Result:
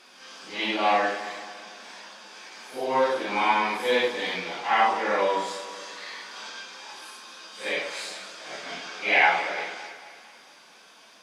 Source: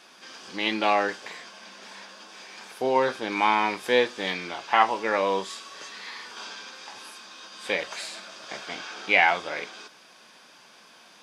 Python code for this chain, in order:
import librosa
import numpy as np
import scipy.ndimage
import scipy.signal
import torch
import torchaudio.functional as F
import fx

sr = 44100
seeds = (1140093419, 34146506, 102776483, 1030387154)

y = fx.phase_scramble(x, sr, seeds[0], window_ms=200)
y = fx.low_shelf(y, sr, hz=140.0, db=-10.5)
y = fx.echo_alternate(y, sr, ms=112, hz=1300.0, feedback_pct=70, wet_db=-9.5)